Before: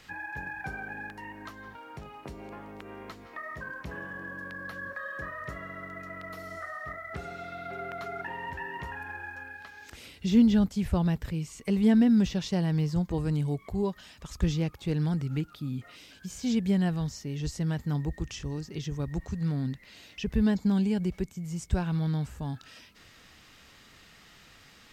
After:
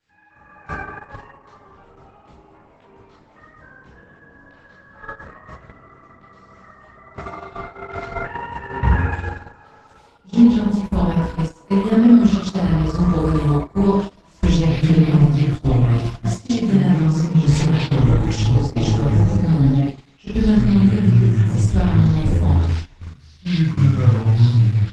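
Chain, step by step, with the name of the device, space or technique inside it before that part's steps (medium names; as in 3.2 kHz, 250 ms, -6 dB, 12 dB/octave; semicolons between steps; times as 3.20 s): 8.69–9.54 s: tone controls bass +14 dB, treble -11 dB; ever faster or slower copies 174 ms, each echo -6 st, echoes 2; speakerphone in a meeting room (reverberation RT60 0.75 s, pre-delay 15 ms, DRR -5.5 dB; level rider gain up to 8.5 dB; gate -18 dBFS, range -21 dB; trim -1 dB; Opus 12 kbps 48 kHz)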